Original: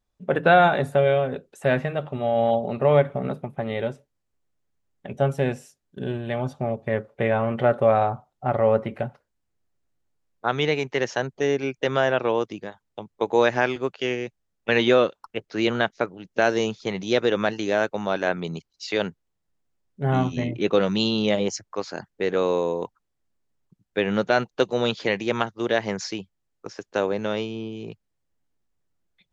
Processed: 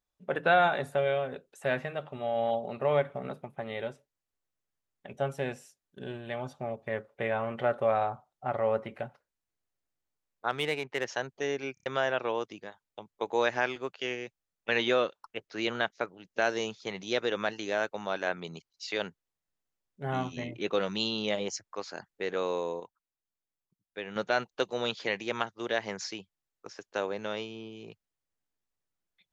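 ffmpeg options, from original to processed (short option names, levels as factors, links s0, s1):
-filter_complex "[0:a]asettb=1/sr,asplit=3[s0][s1][s2];[s0]atrim=end=10.504[s3];[s1]atrim=start=10.5:end=11.08,asetpts=PTS-STARTPTS,afade=t=in:d=0.004:c=qsin,afade=t=out:st=0.576:d=0.004:c=qsin,adynamicsmooth=sensitivity=3.5:basefreq=3100[s4];[s2]atrim=start=11.076[s5];[s3][s4]acrossfade=d=0.004:c1=hsin:c2=qsin[s6];[s6][s5]acrossfade=d=0.004:c1=qsin:c2=hsin,asplit=7[s7][s8][s9][s10][s11][s12][s13];[s7]atrim=end=11.772[s14];[s8]atrim=start=11.738:end=11.772[s15];[s9]atrim=start=11.738:end=11.772[s16];[s10]atrim=start=11.738:end=11.772[s17];[s11]atrim=start=11.858:end=22.802[s18];[s12]atrim=start=22.798:end=24.162,asetpts=PTS-STARTPTS,volume=0.447[s19];[s13]atrim=start=24.158[s20];[s14][s15]acrossfade=d=0.004:c1=hsin:c2=hsin[s21];[s21][s16]acrossfade=d=0.004:c1=hsin:c2=hsin[s22];[s22][s17]acrossfade=d=0.004:c1=hsin:c2=hsin[s23];[s23][s18]acrossfade=d=0.004:c1=hsin:c2=hsin[s24];[s24][s19]acrossfade=d=0.004:c1=hsin:c2=hsin[s25];[s25][s20]acrossfade=d=0.004:c1=hsin:c2=hsin,lowshelf=f=430:g=-9,volume=0.562"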